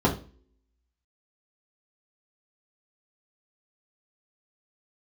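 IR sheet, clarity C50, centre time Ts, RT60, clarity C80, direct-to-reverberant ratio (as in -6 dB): 10.5 dB, 17 ms, 0.40 s, 16.0 dB, -3.5 dB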